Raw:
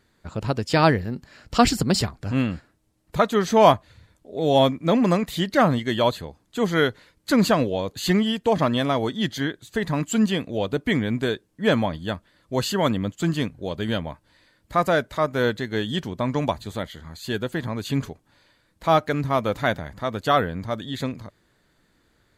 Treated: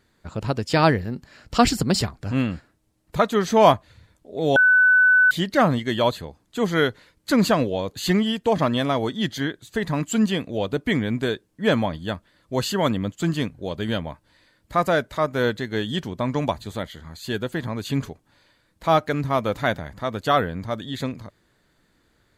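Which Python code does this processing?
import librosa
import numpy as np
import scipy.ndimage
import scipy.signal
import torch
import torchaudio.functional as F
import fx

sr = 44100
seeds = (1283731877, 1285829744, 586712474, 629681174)

y = fx.edit(x, sr, fx.bleep(start_s=4.56, length_s=0.75, hz=1500.0, db=-12.0), tone=tone)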